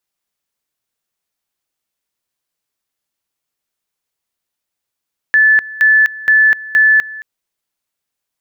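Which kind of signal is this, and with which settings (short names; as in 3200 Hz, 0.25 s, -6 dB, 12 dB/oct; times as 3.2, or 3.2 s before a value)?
two-level tone 1740 Hz -6 dBFS, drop 19.5 dB, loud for 0.25 s, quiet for 0.22 s, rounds 4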